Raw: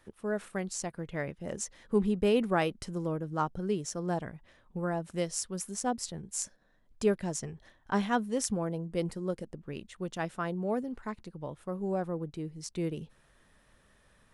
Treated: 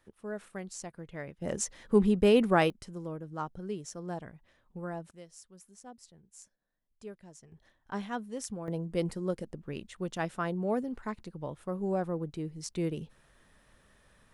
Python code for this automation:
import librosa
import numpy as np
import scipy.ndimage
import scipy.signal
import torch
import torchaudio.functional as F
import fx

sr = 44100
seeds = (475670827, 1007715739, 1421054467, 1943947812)

y = fx.gain(x, sr, db=fx.steps((0.0, -6.0), (1.42, 3.5), (2.7, -6.0), (5.11, -18.0), (7.52, -7.5), (8.68, 1.0)))